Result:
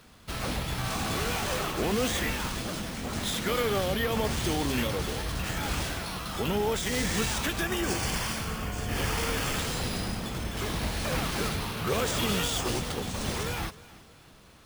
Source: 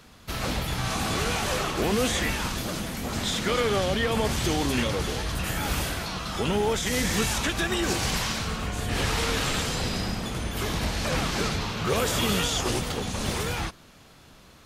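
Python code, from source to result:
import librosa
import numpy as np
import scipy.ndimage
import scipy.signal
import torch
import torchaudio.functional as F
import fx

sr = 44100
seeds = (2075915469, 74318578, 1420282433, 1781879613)

y = np.repeat(x[::3], 3)[:len(x)]
y = fx.notch(y, sr, hz=3900.0, q=6.2, at=(7.59, 9.59))
y = fx.echo_feedback(y, sr, ms=314, feedback_pct=41, wet_db=-20.0)
y = F.gain(torch.from_numpy(y), -3.0).numpy()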